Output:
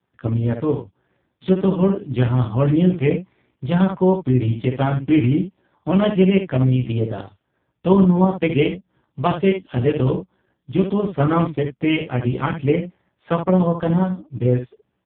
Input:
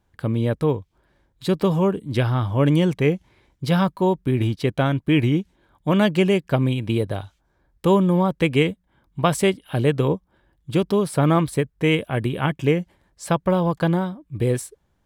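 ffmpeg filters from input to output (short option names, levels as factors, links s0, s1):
-af "aecho=1:1:16|71:0.708|0.447" -ar 8000 -c:a libopencore_amrnb -b:a 4750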